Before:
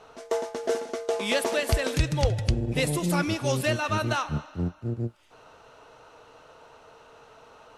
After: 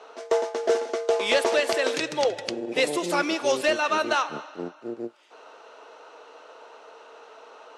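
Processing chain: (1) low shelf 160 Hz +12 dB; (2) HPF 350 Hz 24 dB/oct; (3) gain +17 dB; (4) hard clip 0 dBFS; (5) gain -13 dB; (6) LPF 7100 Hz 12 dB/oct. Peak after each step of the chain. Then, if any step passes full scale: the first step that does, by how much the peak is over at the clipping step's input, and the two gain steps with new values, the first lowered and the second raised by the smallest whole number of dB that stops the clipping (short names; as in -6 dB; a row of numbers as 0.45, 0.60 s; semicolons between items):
-3.0, -11.5, +5.5, 0.0, -13.0, -12.5 dBFS; step 3, 5.5 dB; step 3 +11 dB, step 5 -7 dB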